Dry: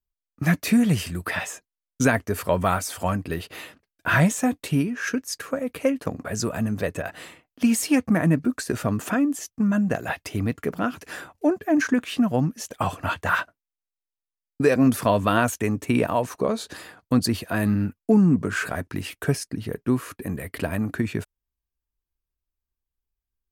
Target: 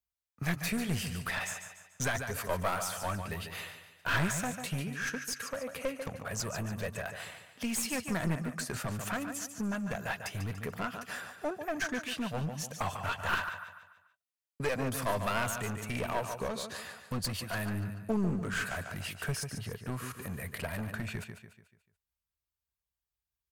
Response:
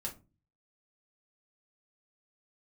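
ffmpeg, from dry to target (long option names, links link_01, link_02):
-filter_complex "[0:a]highpass=74,equalizer=frequency=300:width=1.4:gain=-14,asplit=2[link_01][link_02];[link_02]acompressor=threshold=-40dB:ratio=6,volume=-1.5dB[link_03];[link_01][link_03]amix=inputs=2:normalize=0,aecho=1:1:145|290|435|580|725:0.335|0.141|0.0591|0.0248|0.0104,aeval=exprs='clip(val(0),-1,0.0473)':channel_layout=same,volume=-6.5dB"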